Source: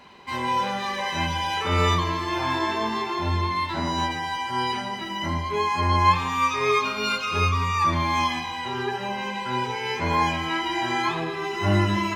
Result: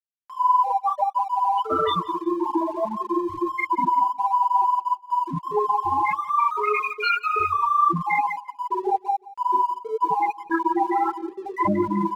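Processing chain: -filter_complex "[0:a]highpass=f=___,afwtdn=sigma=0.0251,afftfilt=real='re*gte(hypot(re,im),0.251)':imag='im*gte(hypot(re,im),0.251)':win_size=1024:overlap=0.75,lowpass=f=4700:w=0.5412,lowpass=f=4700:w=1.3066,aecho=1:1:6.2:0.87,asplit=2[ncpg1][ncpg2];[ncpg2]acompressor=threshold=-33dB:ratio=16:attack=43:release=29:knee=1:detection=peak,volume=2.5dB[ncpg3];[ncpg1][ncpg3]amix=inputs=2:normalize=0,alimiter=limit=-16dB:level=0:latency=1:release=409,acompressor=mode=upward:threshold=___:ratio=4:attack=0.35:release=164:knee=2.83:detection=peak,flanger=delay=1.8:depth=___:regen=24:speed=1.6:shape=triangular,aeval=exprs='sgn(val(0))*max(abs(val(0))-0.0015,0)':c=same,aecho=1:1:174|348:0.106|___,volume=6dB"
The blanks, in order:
160, -33dB, 6.7, 0.0254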